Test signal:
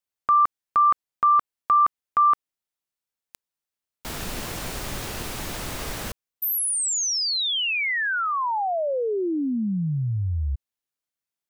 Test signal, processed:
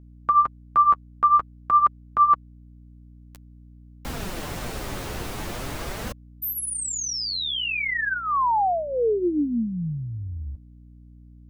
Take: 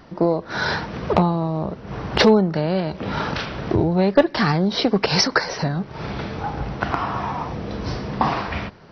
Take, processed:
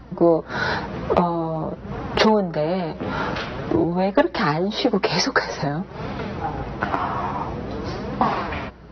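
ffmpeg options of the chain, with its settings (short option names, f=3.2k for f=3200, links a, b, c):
-filter_complex "[0:a]highshelf=f=2.1k:g=-6.5,acrossover=split=230[a][b];[a]acompressor=threshold=-38dB:ratio=6:attack=89:release=311:knee=1[c];[b]flanger=delay=3.6:depth=8.4:regen=11:speed=0.49:shape=triangular[d];[c][d]amix=inputs=2:normalize=0,aeval=exprs='val(0)+0.00282*(sin(2*PI*60*n/s)+sin(2*PI*2*60*n/s)/2+sin(2*PI*3*60*n/s)/3+sin(2*PI*4*60*n/s)/4+sin(2*PI*5*60*n/s)/5)':c=same,volume=5dB"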